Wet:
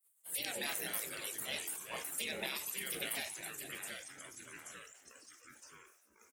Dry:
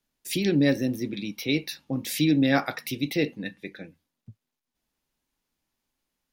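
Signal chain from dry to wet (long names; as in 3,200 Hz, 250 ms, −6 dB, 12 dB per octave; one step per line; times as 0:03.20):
gate on every frequency bin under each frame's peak −25 dB weak
high-pass filter 150 Hz 12 dB per octave
high shelf with overshoot 7,300 Hz +10 dB, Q 3
downward compressor, threshold −42 dBFS, peak gain reduction 8 dB
delay with pitch and tempo change per echo 131 ms, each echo −3 semitones, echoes 3, each echo −6 dB
echo with shifted repeats 93 ms, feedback 64%, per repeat +110 Hz, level −20.5 dB
level that may fall only so fast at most 70 dB per second
level +5.5 dB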